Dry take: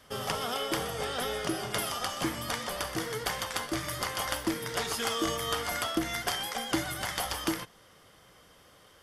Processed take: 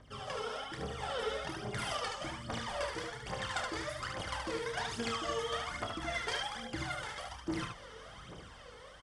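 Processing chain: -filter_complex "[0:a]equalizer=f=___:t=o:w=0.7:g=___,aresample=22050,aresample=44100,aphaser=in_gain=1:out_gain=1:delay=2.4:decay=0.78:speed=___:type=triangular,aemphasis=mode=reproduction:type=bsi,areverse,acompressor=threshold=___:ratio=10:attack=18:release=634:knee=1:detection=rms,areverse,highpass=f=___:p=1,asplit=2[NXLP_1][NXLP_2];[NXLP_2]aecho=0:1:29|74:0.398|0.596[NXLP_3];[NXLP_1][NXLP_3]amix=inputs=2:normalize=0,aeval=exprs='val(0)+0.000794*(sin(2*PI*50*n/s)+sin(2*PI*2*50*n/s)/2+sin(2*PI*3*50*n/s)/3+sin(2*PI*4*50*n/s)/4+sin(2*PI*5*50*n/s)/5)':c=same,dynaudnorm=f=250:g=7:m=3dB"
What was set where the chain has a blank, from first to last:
8300, 3, 1.2, -33dB, 320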